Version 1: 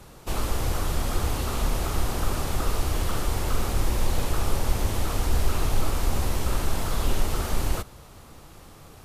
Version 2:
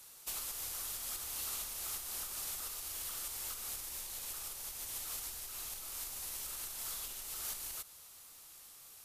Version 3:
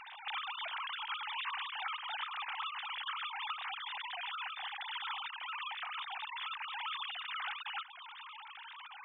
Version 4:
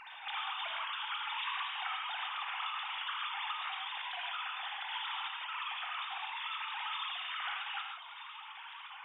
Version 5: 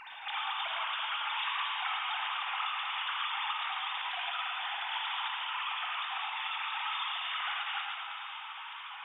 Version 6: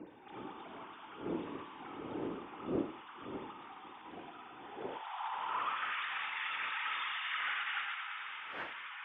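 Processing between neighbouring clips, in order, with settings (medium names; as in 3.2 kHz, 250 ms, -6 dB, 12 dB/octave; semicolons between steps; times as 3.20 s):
compression, threshold -25 dBFS, peak gain reduction 10.5 dB; pre-emphasis filter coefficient 0.97; trim +1 dB
formants replaced by sine waves; compression 2:1, threshold -47 dBFS, peak gain reduction 7 dB; trim +6 dB
gated-style reverb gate 180 ms flat, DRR 0.5 dB; trim -1 dB
echo whose repeats swap between lows and highs 110 ms, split 1.3 kHz, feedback 82%, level -5.5 dB; trim +2.5 dB
wind noise 520 Hz -43 dBFS; band-pass sweep 320 Hz -> 1.8 kHz, 4.60–5.96 s; trim +3.5 dB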